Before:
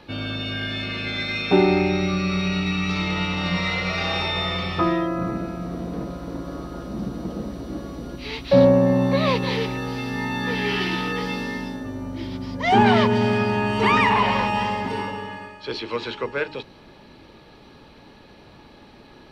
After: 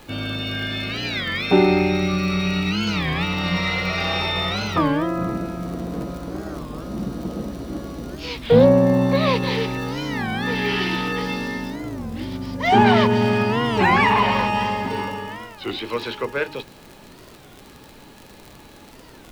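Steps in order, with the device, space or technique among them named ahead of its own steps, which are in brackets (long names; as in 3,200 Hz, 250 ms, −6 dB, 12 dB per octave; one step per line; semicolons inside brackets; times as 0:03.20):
warped LP (wow of a warped record 33 1/3 rpm, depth 250 cents; surface crackle 61 per second −32 dBFS; pink noise bed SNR 30 dB)
level +1.5 dB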